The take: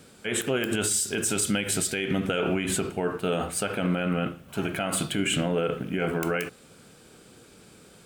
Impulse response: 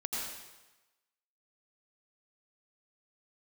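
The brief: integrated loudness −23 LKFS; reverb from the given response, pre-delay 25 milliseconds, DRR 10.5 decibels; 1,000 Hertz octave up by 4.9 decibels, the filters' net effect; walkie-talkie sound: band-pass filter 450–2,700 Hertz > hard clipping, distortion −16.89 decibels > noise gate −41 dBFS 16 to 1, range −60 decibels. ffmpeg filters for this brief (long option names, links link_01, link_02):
-filter_complex "[0:a]equalizer=frequency=1000:width_type=o:gain=8,asplit=2[link_01][link_02];[1:a]atrim=start_sample=2205,adelay=25[link_03];[link_02][link_03]afir=irnorm=-1:irlink=0,volume=-14dB[link_04];[link_01][link_04]amix=inputs=2:normalize=0,highpass=450,lowpass=2700,asoftclip=type=hard:threshold=-21.5dB,agate=range=-60dB:threshold=-41dB:ratio=16,volume=7.5dB"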